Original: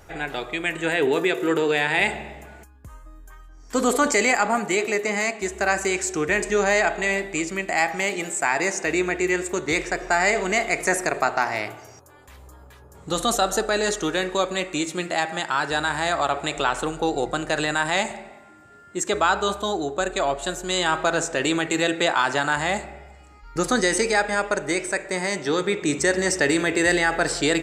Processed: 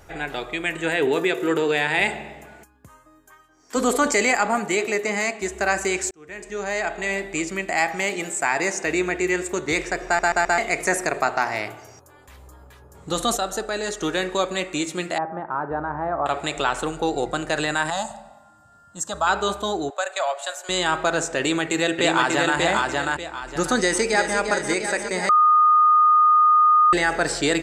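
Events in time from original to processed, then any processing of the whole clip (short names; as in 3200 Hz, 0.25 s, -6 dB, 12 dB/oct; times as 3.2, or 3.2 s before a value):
2.06–3.75 HPF 80 Hz -> 250 Hz
6.11–7.4 fade in linear
10.06 stutter in place 0.13 s, 4 plays
13.37–14.01 gain -4.5 dB
15.18–16.26 LPF 1200 Hz 24 dB/oct
17.9–19.27 fixed phaser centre 920 Hz, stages 4
19.9–20.69 Chebyshev high-pass 570 Hz, order 4
21.39–22.57 echo throw 0.59 s, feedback 30%, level -2 dB
23.78–24.38 echo throw 0.35 s, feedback 80%, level -7.5 dB
25.29–26.93 bleep 1230 Hz -12 dBFS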